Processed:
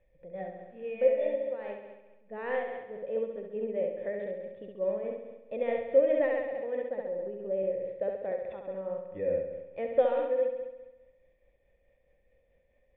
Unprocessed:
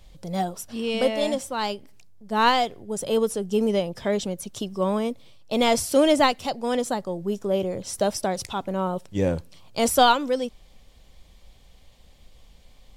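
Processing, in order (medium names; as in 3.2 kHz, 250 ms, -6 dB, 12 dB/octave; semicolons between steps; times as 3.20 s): cascade formant filter e; flutter echo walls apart 11.6 m, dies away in 1.1 s; tremolo 4.7 Hz, depth 34%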